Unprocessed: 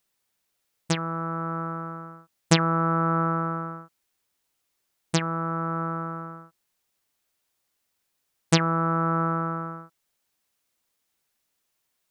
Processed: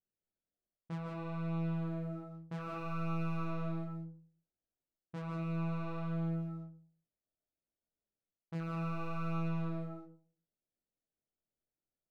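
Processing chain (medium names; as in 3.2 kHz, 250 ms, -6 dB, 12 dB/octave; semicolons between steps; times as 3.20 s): local Wiener filter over 41 samples; low-pass 1.6 kHz 24 dB/octave; reverse; compression 12:1, threshold -36 dBFS, peak gain reduction 22 dB; reverse; waveshaping leveller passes 2; in parallel at -10.5 dB: hard clipper -36.5 dBFS, distortion -12 dB; on the sum: chorus 0.64 Hz, delay 18.5 ms, depth 5.4 ms; algorithmic reverb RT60 0.45 s, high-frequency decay 0.35×, pre-delay 115 ms, DRR 2 dB; trim -4.5 dB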